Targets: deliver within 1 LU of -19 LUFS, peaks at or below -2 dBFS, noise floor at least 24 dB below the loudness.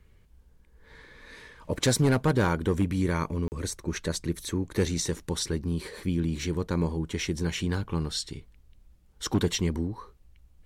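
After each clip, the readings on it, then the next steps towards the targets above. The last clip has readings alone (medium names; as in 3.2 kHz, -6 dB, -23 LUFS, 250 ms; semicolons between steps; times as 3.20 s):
clipped samples 0.5%; clipping level -16.5 dBFS; dropouts 1; longest dropout 39 ms; loudness -29.0 LUFS; peak level -16.5 dBFS; loudness target -19.0 LUFS
-> clip repair -16.5 dBFS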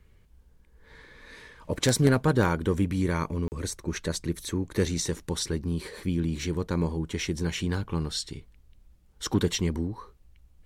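clipped samples 0.0%; dropouts 1; longest dropout 39 ms
-> interpolate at 3.48 s, 39 ms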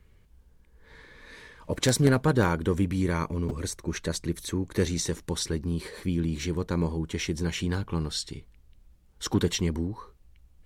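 dropouts 0; loudness -28.5 LUFS; peak level -7.5 dBFS; loudness target -19.0 LUFS
-> trim +9.5 dB; peak limiter -2 dBFS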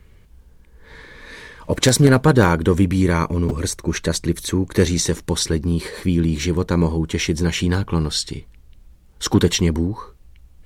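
loudness -19.0 LUFS; peak level -2.0 dBFS; noise floor -49 dBFS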